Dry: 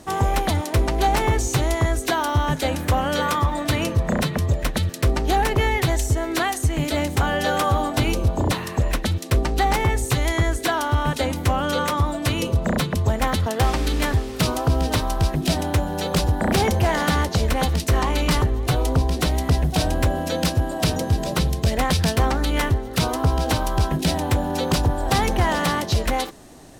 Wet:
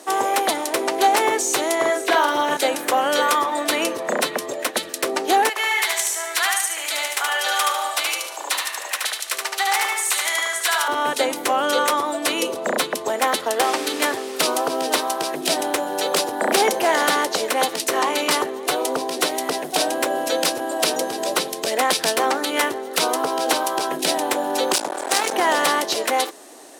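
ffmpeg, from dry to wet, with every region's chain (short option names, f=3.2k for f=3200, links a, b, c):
-filter_complex "[0:a]asettb=1/sr,asplit=3[a][b][c];[a]atrim=end=1.754[d];[b]atrim=start=1.75:end=2.57,asetpts=PTS-STARTPTS,afade=t=in:d=0.004:c=qsin,afade=t=out:st=0.816:d=0.004:c=qsin,acrossover=split=3900[e][f];[f]acompressor=threshold=-41dB:ratio=4:attack=1:release=60[g];[e][g]amix=inputs=2:normalize=0,asplit=2[h][i];[i]adelay=44,volume=-3dB[j];[h][j]amix=inputs=2:normalize=0,atrim=end_sample=36162[k];[c]atrim=start=2.566[l];[d][k]acrossfade=d=0.004:c1=hsin:c2=qsin[m];[m][l]acrossfade=d=0.004:c1=qsin:c2=hsin,asettb=1/sr,asplit=3[n][o][p];[n]atrim=end=5.494[q];[o]atrim=start=5.49:end=10.88,asetpts=PTS-STARTPTS,afade=t=in:d=0.004:c=qsin,afade=t=out:st=5.386:d=0.004:c=qsin,highpass=1.2k,aecho=1:1:74|148|222|296|370|444:0.708|0.319|0.143|0.0645|0.029|0.0131,atrim=end_sample=237699[r];[p]atrim=start=10.876[s];[q][r]acrossfade=d=0.004:c1=hsin:c2=qsin[t];[t][s]acrossfade=d=0.004:c1=qsin:c2=hsin,asettb=1/sr,asplit=3[u][v][w];[u]atrim=end=24.734[x];[v]atrim=start=24.73:end=25.33,asetpts=PTS-STARTPTS,afade=t=in:d=0.004:c=qsin,afade=t=out:st=0.596:d=0.004:c=qsin,lowpass=f=9.3k:w=0.5412,lowpass=f=9.3k:w=1.3066,aeval=exprs='max(val(0),0)':c=same,aemphasis=mode=production:type=cd[y];[w]atrim=start=25.326[z];[x][y]acrossfade=d=0.004:c1=hsin:c2=qsin[aa];[aa][z]acrossfade=d=0.004:c1=qsin:c2=hsin,highpass=f=330:w=0.5412,highpass=f=330:w=1.3066,equalizer=f=9.6k:w=1.3:g=4.5,volume=4dB"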